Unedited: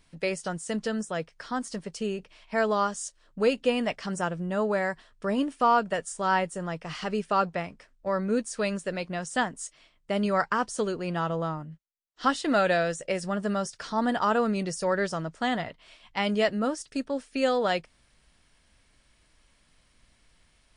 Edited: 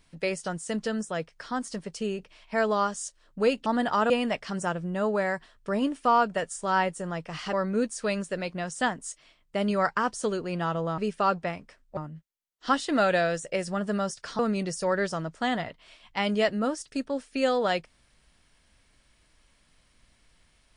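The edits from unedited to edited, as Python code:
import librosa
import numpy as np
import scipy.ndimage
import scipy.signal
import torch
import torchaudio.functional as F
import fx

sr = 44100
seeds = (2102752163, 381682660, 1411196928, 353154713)

y = fx.edit(x, sr, fx.move(start_s=7.09, length_s=0.99, to_s=11.53),
    fx.move(start_s=13.95, length_s=0.44, to_s=3.66), tone=tone)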